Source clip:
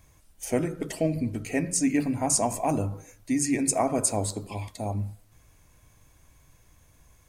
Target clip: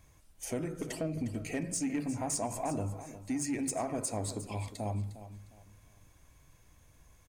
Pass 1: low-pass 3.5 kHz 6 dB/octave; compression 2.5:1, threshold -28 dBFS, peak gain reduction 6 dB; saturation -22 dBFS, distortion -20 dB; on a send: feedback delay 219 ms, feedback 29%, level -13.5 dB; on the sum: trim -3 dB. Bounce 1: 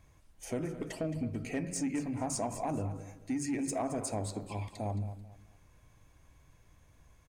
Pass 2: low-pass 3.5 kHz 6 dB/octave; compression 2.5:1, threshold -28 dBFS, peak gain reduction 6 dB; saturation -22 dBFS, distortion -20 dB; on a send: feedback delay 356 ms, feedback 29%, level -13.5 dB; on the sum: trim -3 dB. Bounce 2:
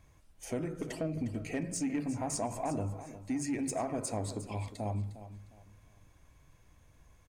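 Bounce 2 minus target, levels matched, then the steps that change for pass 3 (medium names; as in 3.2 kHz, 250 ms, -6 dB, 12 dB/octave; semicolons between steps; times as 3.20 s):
8 kHz band -3.0 dB
change: low-pass 11 kHz 6 dB/octave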